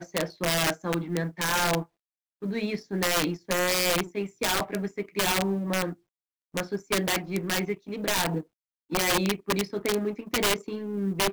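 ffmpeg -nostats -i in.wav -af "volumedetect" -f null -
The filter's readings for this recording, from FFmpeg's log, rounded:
mean_volume: -28.6 dB
max_volume: -18.1 dB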